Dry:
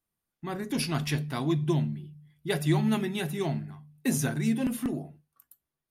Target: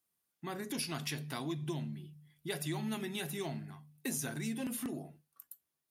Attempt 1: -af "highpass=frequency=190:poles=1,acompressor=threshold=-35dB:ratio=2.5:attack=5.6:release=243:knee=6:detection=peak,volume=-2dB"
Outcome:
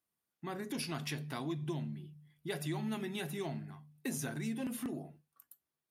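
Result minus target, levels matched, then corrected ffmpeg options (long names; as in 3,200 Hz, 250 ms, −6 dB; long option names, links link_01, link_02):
8,000 Hz band −3.5 dB
-af "highpass=frequency=190:poles=1,highshelf=frequency=3300:gain=7,acompressor=threshold=-35dB:ratio=2.5:attack=5.6:release=243:knee=6:detection=peak,volume=-2dB"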